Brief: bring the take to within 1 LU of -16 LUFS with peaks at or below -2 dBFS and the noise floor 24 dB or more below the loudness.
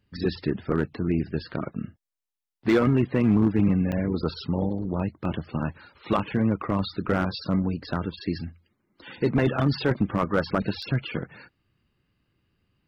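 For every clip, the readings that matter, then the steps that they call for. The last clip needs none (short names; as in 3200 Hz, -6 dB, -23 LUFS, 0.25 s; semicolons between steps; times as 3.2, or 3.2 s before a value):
clipped 0.4%; flat tops at -13.5 dBFS; dropouts 2; longest dropout 4.7 ms; loudness -26.5 LUFS; peak -13.5 dBFS; loudness target -16.0 LUFS
-> clip repair -13.5 dBFS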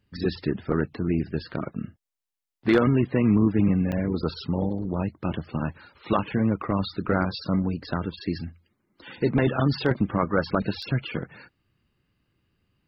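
clipped 0.0%; dropouts 2; longest dropout 4.7 ms
-> interpolate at 3.92/10.82, 4.7 ms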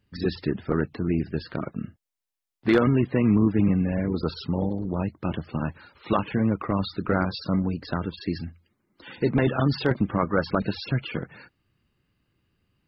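dropouts 0; loudness -26.0 LUFS; peak -7.0 dBFS; loudness target -16.0 LUFS
-> gain +10 dB; limiter -2 dBFS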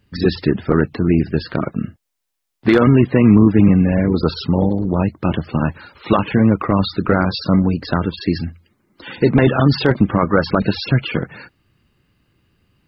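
loudness -16.5 LUFS; peak -2.0 dBFS; noise floor -73 dBFS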